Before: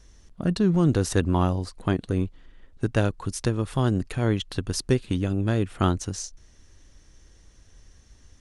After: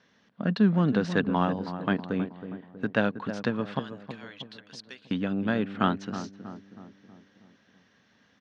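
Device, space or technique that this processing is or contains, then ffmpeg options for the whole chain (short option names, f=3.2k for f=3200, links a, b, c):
kitchen radio: -filter_complex "[0:a]highpass=130,asettb=1/sr,asplit=3[a][b][c];[a]atrim=end=3.794[d];[b]atrim=start=3.79:end=5.11,asetpts=PTS-STARTPTS,afade=t=in:d=0.004:c=qsin,afade=t=out:st=1.316:d=0.004:c=qsin,aderivative[e];[c]atrim=start=5.106[f];[d][e]acrossfade=d=0.004:c1=hsin:c2=qsin[g];[g][f]acrossfade=d=0.004:c1=qsin:c2=hsin,highpass=190,equalizer=f=210:t=q:w=4:g=6,equalizer=f=350:t=q:w=4:g=-9,equalizer=f=1.6k:t=q:w=4:g=5,lowpass=f=4k:w=0.5412,lowpass=f=4k:w=1.3066,asplit=2[h][i];[i]adelay=320,lowpass=f=1.2k:p=1,volume=-10dB,asplit=2[j][k];[k]adelay=320,lowpass=f=1.2k:p=1,volume=0.54,asplit=2[l][m];[m]adelay=320,lowpass=f=1.2k:p=1,volume=0.54,asplit=2[n][o];[o]adelay=320,lowpass=f=1.2k:p=1,volume=0.54,asplit=2[p][q];[q]adelay=320,lowpass=f=1.2k:p=1,volume=0.54,asplit=2[r][s];[s]adelay=320,lowpass=f=1.2k:p=1,volume=0.54[t];[h][j][l][n][p][r][t]amix=inputs=7:normalize=0"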